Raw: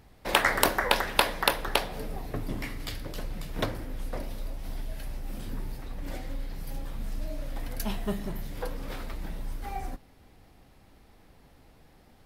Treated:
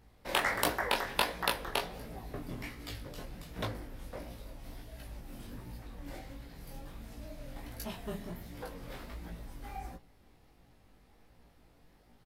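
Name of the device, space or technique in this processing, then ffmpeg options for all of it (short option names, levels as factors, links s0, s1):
double-tracked vocal: -filter_complex "[0:a]asplit=2[s0][s1];[s1]adelay=17,volume=0.447[s2];[s0][s2]amix=inputs=2:normalize=0,flanger=delay=17:depth=7.5:speed=1.4,volume=0.631"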